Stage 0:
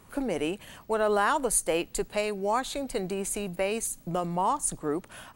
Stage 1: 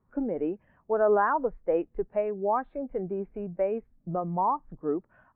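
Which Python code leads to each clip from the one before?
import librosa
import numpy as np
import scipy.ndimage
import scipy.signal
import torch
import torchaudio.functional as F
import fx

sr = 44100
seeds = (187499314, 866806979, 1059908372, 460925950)

y = scipy.signal.sosfilt(scipy.signal.butter(4, 2000.0, 'lowpass', fs=sr, output='sos'), x)
y = fx.spectral_expand(y, sr, expansion=1.5)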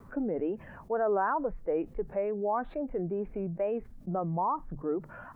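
y = fx.hum_notches(x, sr, base_hz=50, count=3)
y = fx.wow_flutter(y, sr, seeds[0], rate_hz=2.1, depth_cents=91.0)
y = fx.env_flatten(y, sr, amount_pct=50)
y = y * librosa.db_to_amplitude(-6.0)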